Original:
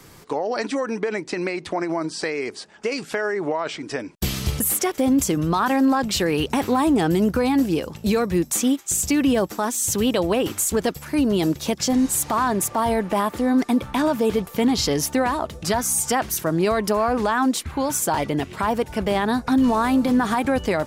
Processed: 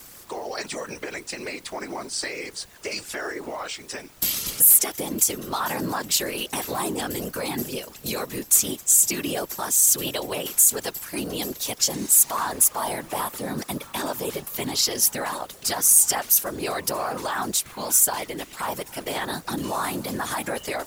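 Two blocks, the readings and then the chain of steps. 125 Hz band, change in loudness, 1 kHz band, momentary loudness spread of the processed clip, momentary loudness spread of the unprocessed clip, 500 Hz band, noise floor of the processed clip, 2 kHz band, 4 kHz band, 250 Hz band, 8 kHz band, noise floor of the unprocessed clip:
-9.5 dB, 0.0 dB, -6.0 dB, 16 LU, 7 LU, -8.5 dB, -46 dBFS, -4.0 dB, +1.0 dB, -13.0 dB, +6.0 dB, -44 dBFS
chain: added noise brown -35 dBFS; RIAA curve recording; whisper effect; trim -6 dB

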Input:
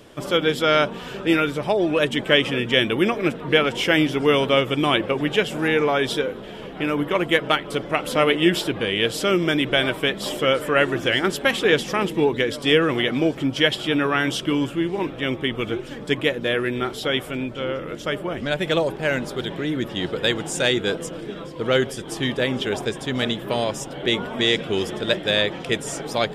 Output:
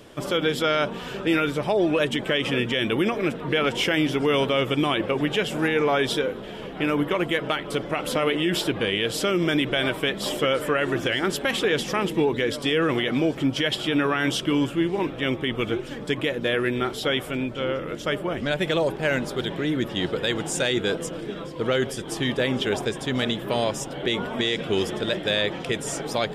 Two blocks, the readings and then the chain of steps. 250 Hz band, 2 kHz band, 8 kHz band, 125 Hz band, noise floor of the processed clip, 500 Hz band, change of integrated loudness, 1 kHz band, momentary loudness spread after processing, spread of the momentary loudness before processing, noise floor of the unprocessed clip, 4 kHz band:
-1.5 dB, -3.5 dB, -0.5 dB, -1.5 dB, -36 dBFS, -2.5 dB, -2.5 dB, -2.5 dB, 6 LU, 8 LU, -36 dBFS, -3.5 dB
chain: peak limiter -13 dBFS, peak gain reduction 9 dB

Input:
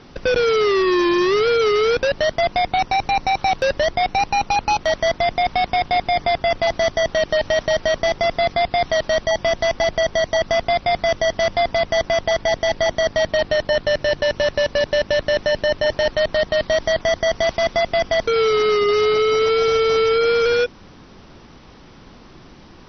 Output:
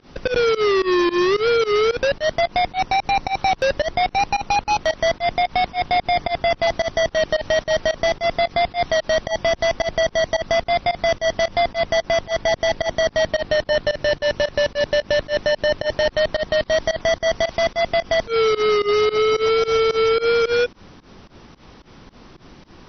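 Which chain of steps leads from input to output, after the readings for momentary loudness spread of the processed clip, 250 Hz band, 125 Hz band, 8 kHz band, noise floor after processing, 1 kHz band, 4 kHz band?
4 LU, -1.0 dB, -1.0 dB, no reading, -47 dBFS, -1.0 dB, -1.0 dB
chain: volume shaper 110 bpm, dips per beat 2, -23 dB, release 108 ms

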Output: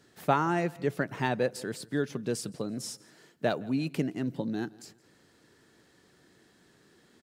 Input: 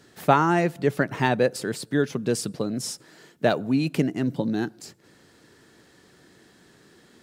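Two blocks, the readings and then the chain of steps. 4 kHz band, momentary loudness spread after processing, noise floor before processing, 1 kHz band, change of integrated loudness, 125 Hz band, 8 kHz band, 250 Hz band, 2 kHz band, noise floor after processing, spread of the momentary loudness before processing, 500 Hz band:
-7.0 dB, 10 LU, -57 dBFS, -7.0 dB, -7.0 dB, -7.0 dB, -7.0 dB, -7.0 dB, -7.0 dB, -64 dBFS, 9 LU, -7.0 dB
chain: feedback delay 168 ms, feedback 34%, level -23 dB; trim -7 dB

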